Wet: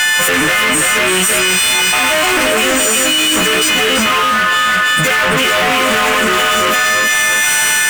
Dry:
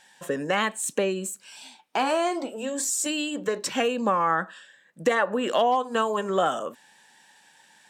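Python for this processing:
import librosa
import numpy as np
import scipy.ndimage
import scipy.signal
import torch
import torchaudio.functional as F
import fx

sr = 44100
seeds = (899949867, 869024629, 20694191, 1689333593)

p1 = fx.freq_snap(x, sr, grid_st=3)
p2 = fx.spec_box(p1, sr, start_s=6.33, length_s=0.8, low_hz=1500.0, high_hz=7900.0, gain_db=8)
p3 = fx.rider(p2, sr, range_db=10, speed_s=0.5)
p4 = p2 + (p3 * librosa.db_to_amplitude(2.5))
p5 = fx.fuzz(p4, sr, gain_db=38.0, gate_db=-45.0)
p6 = fx.band_shelf(p5, sr, hz=1900.0, db=9.5, octaves=1.7)
p7 = p6 + fx.echo_feedback(p6, sr, ms=336, feedback_pct=30, wet_db=-3.5, dry=0)
p8 = fx.env_flatten(p7, sr, amount_pct=100)
y = p8 * librosa.db_to_amplitude(-8.0)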